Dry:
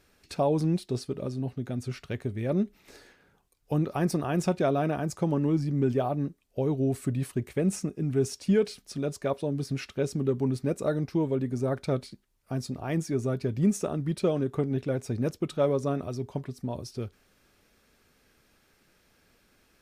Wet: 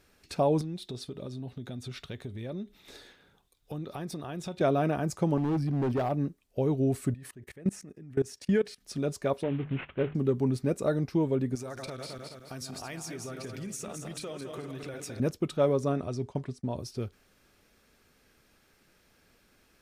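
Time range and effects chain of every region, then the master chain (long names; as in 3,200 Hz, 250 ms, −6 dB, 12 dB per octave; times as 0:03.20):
0:00.61–0:04.61: downward compressor 3 to 1, threshold −37 dBFS + parametric band 3,600 Hz +13 dB 0.24 octaves
0:05.37–0:06.12: parametric band 6,900 Hz −13.5 dB 0.35 octaves + hard clipping −24.5 dBFS
0:07.14–0:08.82: parametric band 1,800 Hz +10.5 dB 0.22 octaves + output level in coarse steps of 23 dB
0:09.43–0:10.15: variable-slope delta modulation 16 kbit/s + mains-hum notches 50/100/150/200/250 Hz
0:11.55–0:15.20: feedback delay that plays each chunk backwards 106 ms, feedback 65%, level −7.5 dB + tilt shelving filter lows −8 dB, about 840 Hz + downward compressor 5 to 1, threshold −36 dBFS
0:15.92–0:16.78: low-pass filter 10,000 Hz 24 dB per octave + downward expander −45 dBFS
whole clip: no processing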